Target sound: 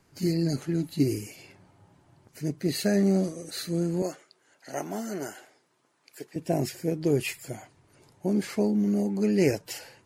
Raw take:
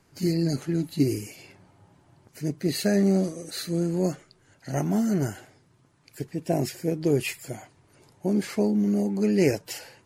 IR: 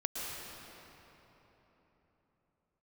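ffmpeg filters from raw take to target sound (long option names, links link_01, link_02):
-filter_complex "[0:a]asettb=1/sr,asplit=3[link_01][link_02][link_03];[link_01]atrim=end=4.024[link_04];[link_02]atrim=start=4.02:end=6.36,asetpts=PTS-STARTPTS,afade=type=in:duration=0.004:curve=qsin,afade=type=out:start_time=2.336:duration=0.004:curve=qsin,highpass=390[link_05];[link_03]atrim=start=6.356[link_06];[link_04][link_05]acrossfade=duration=0.004:curve1=hsin:curve2=qsin[link_07];[link_07][link_06]acrossfade=duration=0.004:curve1=qsin:curve2=hsin,volume=-1.5dB"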